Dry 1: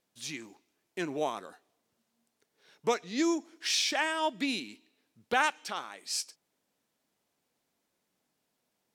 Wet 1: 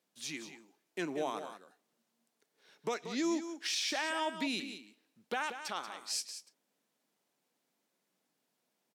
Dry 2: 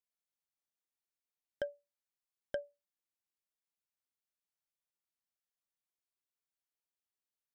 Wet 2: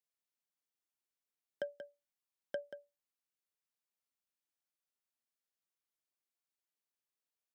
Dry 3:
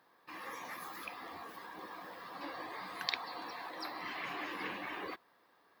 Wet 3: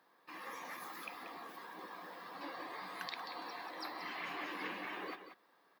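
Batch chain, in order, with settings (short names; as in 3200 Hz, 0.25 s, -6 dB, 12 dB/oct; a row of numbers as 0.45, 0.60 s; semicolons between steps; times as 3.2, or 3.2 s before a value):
HPF 150 Hz 24 dB/oct; limiter -23 dBFS; echo 0.183 s -10 dB; gain -2 dB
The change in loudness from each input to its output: -5.0, -3.5, -2.5 LU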